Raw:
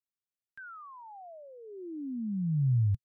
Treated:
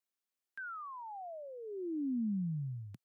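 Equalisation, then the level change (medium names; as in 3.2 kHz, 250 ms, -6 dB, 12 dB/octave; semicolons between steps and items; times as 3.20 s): high-pass 210 Hz 24 dB/octave; +2.5 dB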